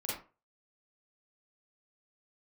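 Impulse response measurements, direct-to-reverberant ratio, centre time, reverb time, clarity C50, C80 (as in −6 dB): −6.5 dB, 51 ms, 0.35 s, 1.0 dB, 7.5 dB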